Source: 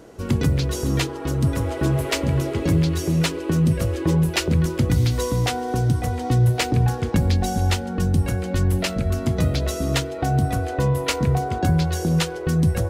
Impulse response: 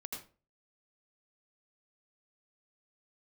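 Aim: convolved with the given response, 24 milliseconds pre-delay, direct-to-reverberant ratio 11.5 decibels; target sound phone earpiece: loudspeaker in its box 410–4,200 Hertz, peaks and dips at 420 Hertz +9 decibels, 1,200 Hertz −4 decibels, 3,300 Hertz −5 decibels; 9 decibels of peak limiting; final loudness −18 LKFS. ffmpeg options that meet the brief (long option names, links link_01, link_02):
-filter_complex "[0:a]alimiter=limit=-17.5dB:level=0:latency=1,asplit=2[link_01][link_02];[1:a]atrim=start_sample=2205,adelay=24[link_03];[link_02][link_03]afir=irnorm=-1:irlink=0,volume=-10dB[link_04];[link_01][link_04]amix=inputs=2:normalize=0,highpass=410,equalizer=frequency=420:width_type=q:width=4:gain=9,equalizer=frequency=1200:width_type=q:width=4:gain=-4,equalizer=frequency=3300:width_type=q:width=4:gain=-5,lowpass=frequency=4200:width=0.5412,lowpass=frequency=4200:width=1.3066,volume=12.5dB"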